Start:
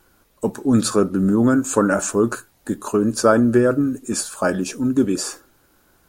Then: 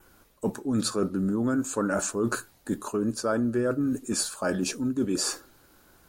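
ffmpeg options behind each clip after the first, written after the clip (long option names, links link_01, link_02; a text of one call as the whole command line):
ffmpeg -i in.wav -af "adynamicequalizer=threshold=0.00631:dfrequency=4300:dqfactor=3.6:tfrequency=4300:tqfactor=3.6:attack=5:release=100:ratio=0.375:range=2.5:mode=boostabove:tftype=bell,areverse,acompressor=threshold=-25dB:ratio=4,areverse" out.wav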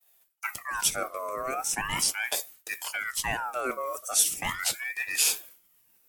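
ffmpeg -i in.wav -af "agate=range=-33dB:threshold=-48dB:ratio=3:detection=peak,aemphasis=mode=production:type=bsi,aeval=exprs='val(0)*sin(2*PI*1500*n/s+1500*0.45/0.39*sin(2*PI*0.39*n/s))':channel_layout=same" out.wav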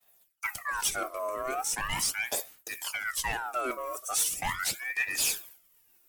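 ffmpeg -i in.wav -af "asoftclip=type=tanh:threshold=-21.5dB,aphaser=in_gain=1:out_gain=1:delay=3.1:decay=0.49:speed=0.4:type=sinusoidal,volume=-1dB" out.wav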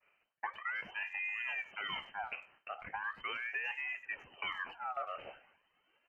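ffmpeg -i in.wav -filter_complex "[0:a]acompressor=threshold=-39dB:ratio=5,lowpass=frequency=2600:width_type=q:width=0.5098,lowpass=frequency=2600:width_type=q:width=0.6013,lowpass=frequency=2600:width_type=q:width=0.9,lowpass=frequency=2600:width_type=q:width=2.563,afreqshift=-3100,asplit=2[link_01][link_02];[link_02]adelay=100,highpass=300,lowpass=3400,asoftclip=type=hard:threshold=-38.5dB,volume=-21dB[link_03];[link_01][link_03]amix=inputs=2:normalize=0,volume=2.5dB" out.wav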